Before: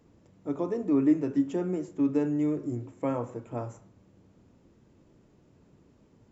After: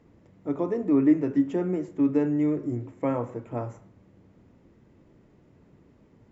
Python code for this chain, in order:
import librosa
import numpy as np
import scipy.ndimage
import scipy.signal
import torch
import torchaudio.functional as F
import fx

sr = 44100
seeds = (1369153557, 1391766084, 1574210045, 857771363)

y = fx.lowpass(x, sr, hz=2900.0, slope=6)
y = fx.peak_eq(y, sr, hz=2000.0, db=5.5, octaves=0.32)
y = y * librosa.db_to_amplitude(3.0)